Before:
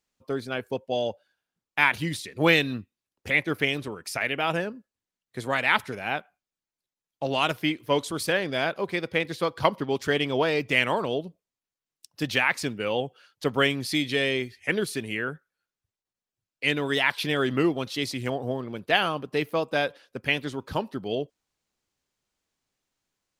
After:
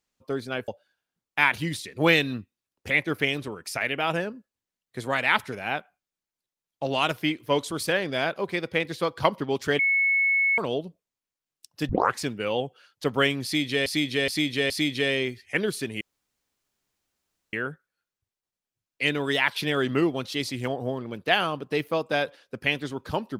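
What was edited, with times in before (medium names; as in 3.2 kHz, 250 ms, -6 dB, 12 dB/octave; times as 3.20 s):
0.68–1.08 s: delete
10.19–10.98 s: bleep 2.2 kHz -19 dBFS
12.29 s: tape start 0.29 s
13.84–14.26 s: loop, 4 plays
15.15 s: insert room tone 1.52 s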